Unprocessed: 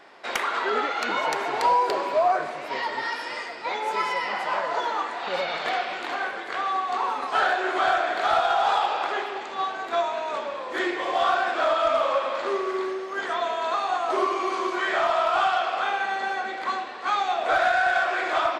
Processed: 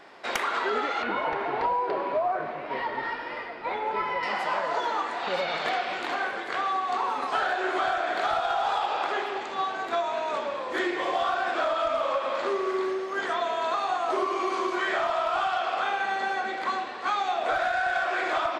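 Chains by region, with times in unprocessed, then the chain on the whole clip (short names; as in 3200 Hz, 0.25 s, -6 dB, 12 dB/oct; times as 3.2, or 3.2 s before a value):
1.02–4.23 CVSD 64 kbps + air absorption 350 m
whole clip: low shelf 230 Hz +5 dB; compressor, threshold -23 dBFS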